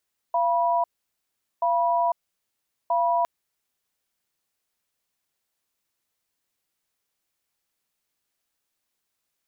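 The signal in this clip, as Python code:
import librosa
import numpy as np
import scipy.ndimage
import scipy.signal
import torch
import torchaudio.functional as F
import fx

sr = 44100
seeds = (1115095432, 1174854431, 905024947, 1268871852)

y = fx.cadence(sr, length_s=2.91, low_hz=686.0, high_hz=975.0, on_s=0.5, off_s=0.78, level_db=-22.0)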